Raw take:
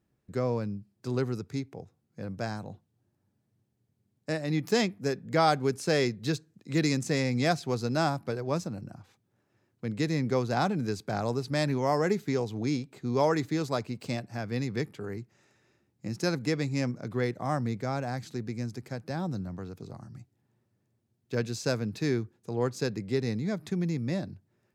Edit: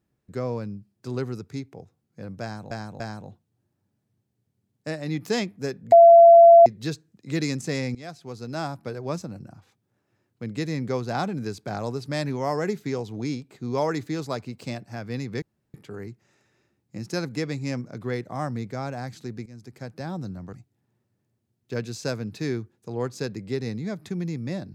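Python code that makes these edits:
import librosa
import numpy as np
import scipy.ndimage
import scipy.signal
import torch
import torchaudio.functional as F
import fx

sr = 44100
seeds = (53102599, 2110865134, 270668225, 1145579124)

y = fx.edit(x, sr, fx.repeat(start_s=2.42, length_s=0.29, count=3),
    fx.bleep(start_s=5.34, length_s=0.74, hz=678.0, db=-7.0),
    fx.fade_in_from(start_s=7.37, length_s=1.07, floor_db=-18.0),
    fx.insert_room_tone(at_s=14.84, length_s=0.32),
    fx.fade_in_from(start_s=18.56, length_s=0.4, floor_db=-17.0),
    fx.cut(start_s=19.63, length_s=0.51), tone=tone)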